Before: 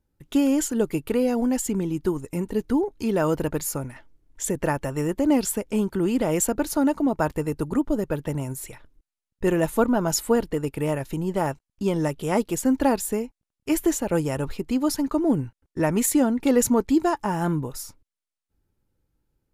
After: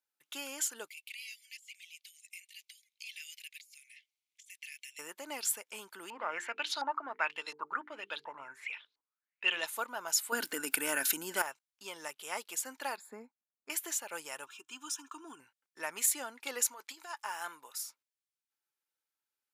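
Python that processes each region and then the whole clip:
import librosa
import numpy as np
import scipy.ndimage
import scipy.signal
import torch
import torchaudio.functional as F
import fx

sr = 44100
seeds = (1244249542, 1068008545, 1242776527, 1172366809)

y = fx.chain(x, sr, fx.steep_highpass(hz=2100.0, slope=72),
    fx.over_compress(threshold_db=-43.0, ratio=-1.0),
    fx.high_shelf(hz=7000.0, db=-10.5), at=(0.88, 4.99))
y = fx.chain(y, sr, fx.high_shelf(hz=3800.0, db=6.5),
    fx.hum_notches(base_hz=50, count=9),
    fx.filter_lfo_lowpass(shape='saw_up', hz=1.4, low_hz=860.0, high_hz=4500.0, q=7.5), at=(6.1, 9.66))
y = fx.chain(y, sr, fx.high_shelf(hz=5000.0, db=11.0),
    fx.small_body(hz=(260.0, 1500.0), ring_ms=35, db=17),
    fx.env_flatten(amount_pct=50), at=(10.32, 11.42))
y = fx.chain(y, sr, fx.moving_average(points=15),
    fx.peak_eq(hz=230.0, db=13.0, octaves=0.7), at=(12.97, 13.7))
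y = fx.chain(y, sr, fx.fixed_phaser(hz=3000.0, stages=8),
    fx.comb(ms=2.9, depth=0.56), at=(14.46, 15.4))
y = fx.chain(y, sr, fx.highpass(hz=620.0, slope=6),
    fx.over_compress(threshold_db=-27.0, ratio=-0.5), at=(16.67, 17.78))
y = scipy.signal.sosfilt(scipy.signal.butter(2, 1400.0, 'highpass', fs=sr, output='sos'), y)
y = fx.notch(y, sr, hz=1900.0, q=22.0)
y = y * 10.0 ** (-4.0 / 20.0)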